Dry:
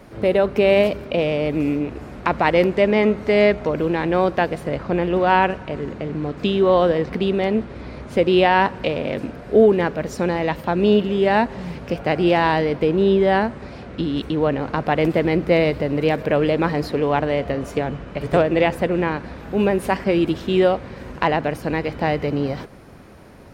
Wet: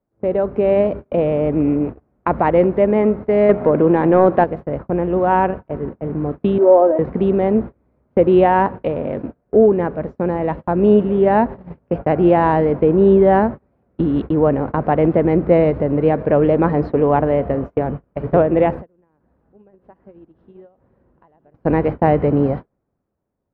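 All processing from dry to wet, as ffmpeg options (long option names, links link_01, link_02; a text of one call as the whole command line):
ffmpeg -i in.wav -filter_complex "[0:a]asettb=1/sr,asplit=3[link_01][link_02][link_03];[link_01]atrim=end=3.494[link_04];[link_02]atrim=start=3.49:end=4.44,asetpts=PTS-STARTPTS,afade=type=in:duration=0.004:curve=qsin,afade=type=out:start_time=0.946:duration=0.004:curve=qsin,highpass=130,lowpass=4800,acontrast=83[link_05];[link_03]atrim=start=4.436[link_06];[link_04][link_05]acrossfade=duration=0.004:curve1=hsin:curve2=qsin[link_07];[link_07][link_06]acrossfade=duration=0.004:curve1=qsin:curve2=hsin,asettb=1/sr,asplit=3[link_08][link_09][link_10];[link_08]atrim=end=6.584[link_11];[link_09]atrim=start=6.58:end=6.99,asetpts=PTS-STARTPTS,afade=type=in:duration=0.004:curve=qsin,afade=type=out:start_time=0.406:duration=0.004:curve=qsin,aecho=1:1:3.2:0.98,atrim=end_sample=18081,acrusher=bits=4:mode=log:mix=0:aa=0.000001,bandpass=frequency=630:width_type=q:width=1.4[link_12];[link_10]atrim=start=6.986[link_13];[link_11][link_12]acrossfade=duration=0.004:curve1=hsin:curve2=qsin[link_14];[link_14][link_13]acrossfade=duration=0.004:curve1=qsin:curve2=hsin,asettb=1/sr,asplit=3[link_15][link_16][link_17];[link_15]atrim=end=18.814[link_18];[link_16]atrim=start=18.81:end=21.54,asetpts=PTS-STARTPTS,afade=type=in:duration=0.004:curve=qsin,afade=type=out:start_time=2.726:duration=0.004:curve=qsin,equalizer=frequency=2300:width=7.7:gain=-5.5,acompressor=threshold=-28dB:ratio=12:attack=3.2:release=140:knee=1:detection=peak,aecho=1:1:899:0.2,atrim=end_sample=120393[link_19];[link_17]atrim=start=21.536[link_20];[link_18][link_19]acrossfade=duration=0.004:curve1=hsin:curve2=qsin[link_21];[link_21][link_20]acrossfade=duration=0.004:curve1=qsin:curve2=hsin,agate=range=-32dB:threshold=-27dB:ratio=16:detection=peak,lowpass=1100,dynaudnorm=framelen=110:gausssize=17:maxgain=11.5dB,volume=-1dB" out.wav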